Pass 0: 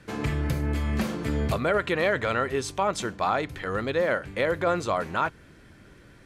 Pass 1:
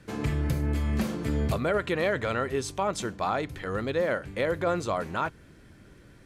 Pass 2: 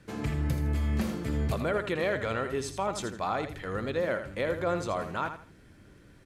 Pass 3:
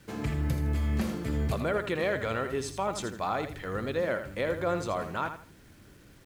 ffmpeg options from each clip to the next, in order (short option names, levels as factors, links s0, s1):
-af "equalizer=f=1700:w=0.35:g=-4"
-af "aecho=1:1:81|162|243:0.335|0.0871|0.0226,volume=0.708"
-af "acrusher=bits=9:mix=0:aa=0.000001"